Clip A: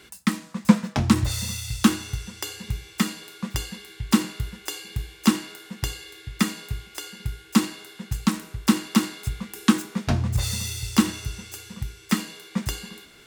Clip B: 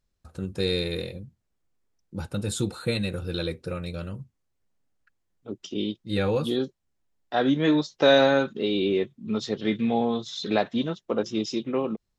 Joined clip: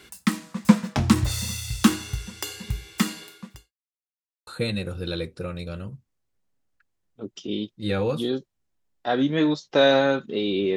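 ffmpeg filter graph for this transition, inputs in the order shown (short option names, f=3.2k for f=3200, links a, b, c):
-filter_complex "[0:a]apad=whole_dur=10.76,atrim=end=10.76,asplit=2[a][b];[a]atrim=end=3.73,asetpts=PTS-STARTPTS,afade=t=out:st=3.23:d=0.5:c=qua[c];[b]atrim=start=3.73:end=4.47,asetpts=PTS-STARTPTS,volume=0[d];[1:a]atrim=start=2.74:end=9.03,asetpts=PTS-STARTPTS,afade=t=in:d=0.004:c=hsin[e];[c][d][e]concat=n=3:v=0:a=1"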